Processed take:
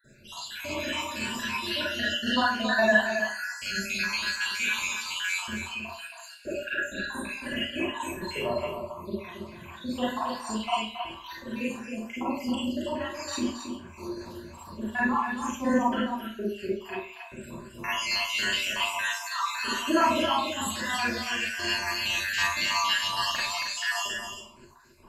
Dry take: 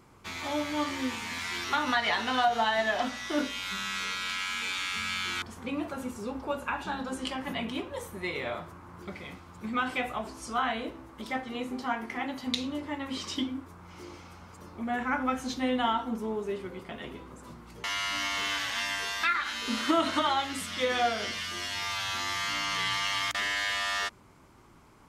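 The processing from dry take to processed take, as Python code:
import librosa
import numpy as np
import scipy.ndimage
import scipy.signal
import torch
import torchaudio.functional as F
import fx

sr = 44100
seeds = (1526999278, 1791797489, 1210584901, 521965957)

p1 = fx.spec_dropout(x, sr, seeds[0], share_pct=77)
p2 = fx.ripple_eq(p1, sr, per_octave=1.4, db=12)
p3 = p2 + fx.echo_single(p2, sr, ms=272, db=-7.5, dry=0)
y = fx.rev_schroeder(p3, sr, rt60_s=0.39, comb_ms=33, drr_db=-7.5)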